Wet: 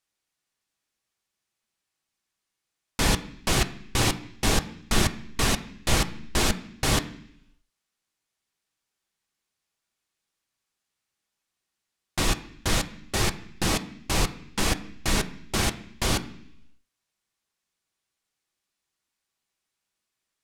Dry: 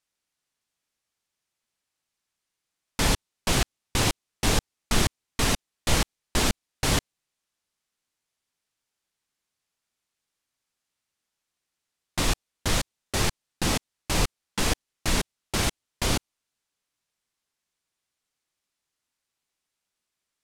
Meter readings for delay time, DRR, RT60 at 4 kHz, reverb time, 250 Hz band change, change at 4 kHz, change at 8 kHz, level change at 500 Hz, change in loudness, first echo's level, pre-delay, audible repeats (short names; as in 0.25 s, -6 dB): none, 7.0 dB, 0.95 s, 0.70 s, +1.0 dB, +0.5 dB, 0.0 dB, +0.5 dB, +0.5 dB, none, 3 ms, none